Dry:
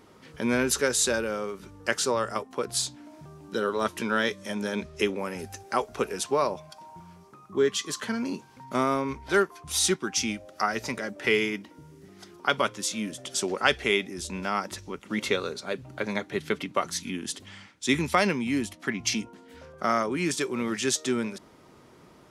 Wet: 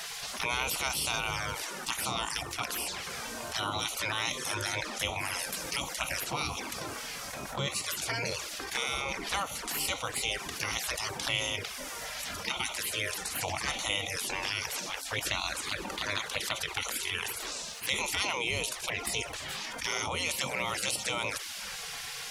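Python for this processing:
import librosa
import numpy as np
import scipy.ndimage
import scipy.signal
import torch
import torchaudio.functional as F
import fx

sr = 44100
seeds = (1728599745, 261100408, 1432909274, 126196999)

y = fx.env_flanger(x, sr, rest_ms=3.7, full_db=-24.5)
y = fx.spec_gate(y, sr, threshold_db=-20, keep='weak')
y = fx.env_flatten(y, sr, amount_pct=70)
y = y * 10.0 ** (3.0 / 20.0)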